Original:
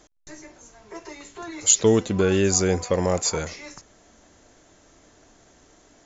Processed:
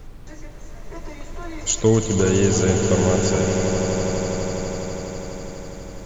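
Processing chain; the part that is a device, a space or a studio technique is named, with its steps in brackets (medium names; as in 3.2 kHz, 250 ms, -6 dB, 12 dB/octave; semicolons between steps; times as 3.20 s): car interior (peaking EQ 120 Hz +7 dB 0.94 oct; treble shelf 4.7 kHz -8 dB; brown noise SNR 13 dB); echo with a slow build-up 82 ms, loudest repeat 8, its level -10.5 dB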